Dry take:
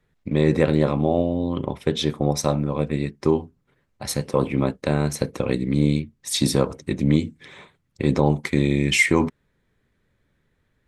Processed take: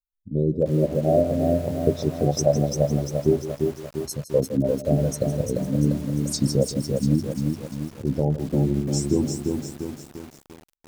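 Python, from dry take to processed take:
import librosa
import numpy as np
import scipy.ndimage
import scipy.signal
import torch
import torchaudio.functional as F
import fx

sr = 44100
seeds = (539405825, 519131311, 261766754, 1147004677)

p1 = fx.bin_expand(x, sr, power=2.0)
p2 = fx.level_steps(p1, sr, step_db=13)
p3 = p1 + F.gain(torch.from_numpy(p2), -2.0).numpy()
p4 = scipy.signal.sosfilt(scipy.signal.ellip(3, 1.0, 40, [670.0, 5200.0], 'bandstop', fs=sr, output='sos'), p3)
p5 = p4 + fx.echo_single(p4, sr, ms=161, db=-13.5, dry=0)
p6 = fx.rider(p5, sr, range_db=4, speed_s=0.5)
p7 = fx.graphic_eq_31(p6, sr, hz=(630, 3150, 10000), db=(6, 5, -8))
y = fx.echo_crushed(p7, sr, ms=346, feedback_pct=55, bits=7, wet_db=-4)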